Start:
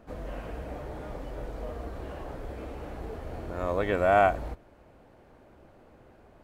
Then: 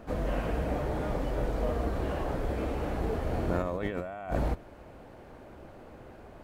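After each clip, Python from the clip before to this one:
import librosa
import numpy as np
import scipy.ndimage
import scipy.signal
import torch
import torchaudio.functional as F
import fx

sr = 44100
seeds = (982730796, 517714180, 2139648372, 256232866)

y = fx.dynamic_eq(x, sr, hz=180.0, q=1.1, threshold_db=-45.0, ratio=4.0, max_db=6)
y = fx.over_compress(y, sr, threshold_db=-33.0, ratio=-1.0)
y = y * librosa.db_to_amplitude(3.0)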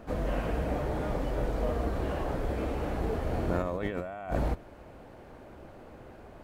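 y = x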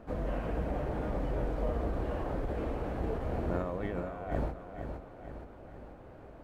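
y = fx.high_shelf(x, sr, hz=2800.0, db=-9.0)
y = fx.echo_feedback(y, sr, ms=465, feedback_pct=53, wet_db=-8.0)
y = fx.end_taper(y, sr, db_per_s=110.0)
y = y * librosa.db_to_amplitude(-3.0)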